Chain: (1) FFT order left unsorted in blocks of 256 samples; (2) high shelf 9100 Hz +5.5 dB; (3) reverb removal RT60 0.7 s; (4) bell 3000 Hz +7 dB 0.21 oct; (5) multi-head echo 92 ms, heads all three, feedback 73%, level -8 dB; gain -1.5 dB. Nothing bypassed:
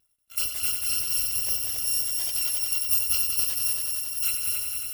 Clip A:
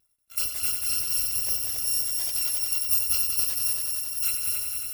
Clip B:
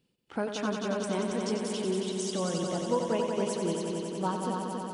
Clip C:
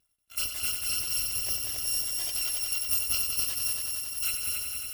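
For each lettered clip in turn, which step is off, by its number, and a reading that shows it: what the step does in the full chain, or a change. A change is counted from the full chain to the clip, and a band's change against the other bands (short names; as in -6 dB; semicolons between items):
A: 4, 2 kHz band -2.5 dB; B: 1, 1 kHz band +22.0 dB; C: 2, 8 kHz band -3.0 dB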